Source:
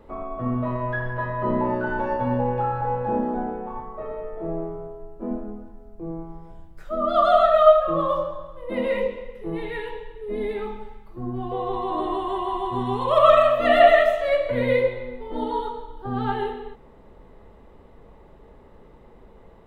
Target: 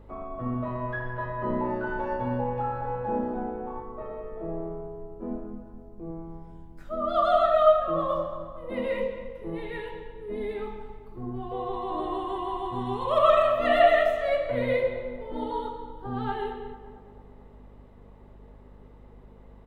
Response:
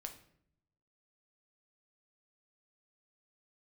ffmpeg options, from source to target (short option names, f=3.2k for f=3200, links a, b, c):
-filter_complex "[0:a]aeval=exprs='val(0)+0.00562*(sin(2*PI*50*n/s)+sin(2*PI*2*50*n/s)/2+sin(2*PI*3*50*n/s)/3+sin(2*PI*4*50*n/s)/4+sin(2*PI*5*50*n/s)/5)':c=same,asplit=2[a][b];[b]adelay=224,lowpass=f=2k:p=1,volume=-12dB,asplit=2[c][d];[d]adelay=224,lowpass=f=2k:p=1,volume=0.54,asplit=2[e][f];[f]adelay=224,lowpass=f=2k:p=1,volume=0.54,asplit=2[g][h];[h]adelay=224,lowpass=f=2k:p=1,volume=0.54,asplit=2[i][j];[j]adelay=224,lowpass=f=2k:p=1,volume=0.54,asplit=2[k][l];[l]adelay=224,lowpass=f=2k:p=1,volume=0.54[m];[c][e][g][i][k][m]amix=inputs=6:normalize=0[n];[a][n]amix=inputs=2:normalize=0,volume=-5dB"